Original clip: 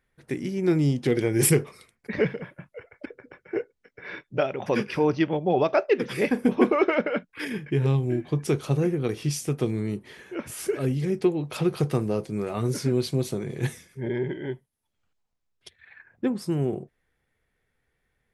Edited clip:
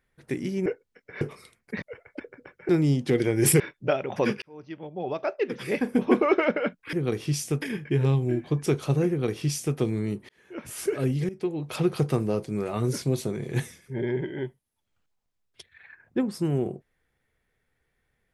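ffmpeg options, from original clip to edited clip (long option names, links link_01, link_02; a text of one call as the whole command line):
ffmpeg -i in.wav -filter_complex "[0:a]asplit=12[link_01][link_02][link_03][link_04][link_05][link_06][link_07][link_08][link_09][link_10][link_11][link_12];[link_01]atrim=end=0.662[link_13];[link_02]atrim=start=3.548:end=4.102[link_14];[link_03]atrim=start=1.568:end=2.182[link_15];[link_04]atrim=start=2.678:end=3.552[link_16];[link_05]atrim=start=0.658:end=1.572[link_17];[link_06]atrim=start=4.098:end=4.92,asetpts=PTS-STARTPTS,afade=type=out:start_time=0.818:duration=0.004:curve=hsin[link_18];[link_07]atrim=start=4.92:end=7.432,asetpts=PTS-STARTPTS,afade=type=in:duration=1.87[link_19];[link_08]atrim=start=8.898:end=9.592[link_20];[link_09]atrim=start=7.428:end=10.1,asetpts=PTS-STARTPTS,afade=type=out:start_time=2.668:duration=0.004:curve=hsin[link_21];[link_10]atrim=start=10.1:end=11.1,asetpts=PTS-STARTPTS,afade=type=in:duration=0.5,afade=type=out:start_time=0.996:duration=0.004:curve=hsin:silence=0.141254[link_22];[link_11]atrim=start=11.1:end=12.832,asetpts=PTS-STARTPTS,afade=type=in:duration=0.44:silence=0.141254[link_23];[link_12]atrim=start=13.088[link_24];[link_13][link_14]acrossfade=duration=0.004:curve1=hsin:curve2=hsin[link_25];[link_25][link_15]acrossfade=duration=0.004:curve1=hsin:curve2=hsin[link_26];[link_26][link_16]acrossfade=duration=0.004:curve1=hsin:curve2=hsin[link_27];[link_27][link_17]acrossfade=duration=0.004:curve1=hsin:curve2=hsin[link_28];[link_18][link_19]concat=n=2:v=0:a=1[link_29];[link_28][link_29]acrossfade=duration=0.004:curve1=hsin:curve2=hsin[link_30];[link_30][link_20]acrossfade=duration=0.004:curve1=hsin:curve2=hsin[link_31];[link_21][link_22][link_23]concat=n=3:v=0:a=1[link_32];[link_31][link_32]acrossfade=duration=0.004:curve1=hsin:curve2=hsin[link_33];[link_33][link_24]acrossfade=duration=0.004:curve1=hsin:curve2=hsin" out.wav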